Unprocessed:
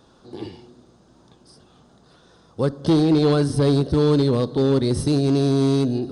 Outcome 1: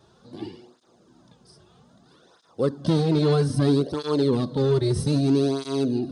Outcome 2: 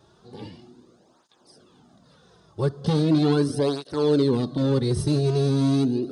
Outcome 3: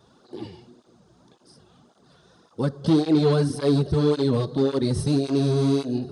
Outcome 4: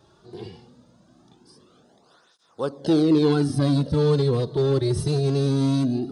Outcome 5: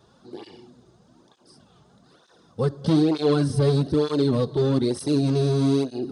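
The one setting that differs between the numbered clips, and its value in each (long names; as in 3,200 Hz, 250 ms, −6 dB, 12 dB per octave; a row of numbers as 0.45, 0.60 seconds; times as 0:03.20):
through-zero flanger with one copy inverted, nulls at: 0.62, 0.39, 1.8, 0.21, 1.1 Hertz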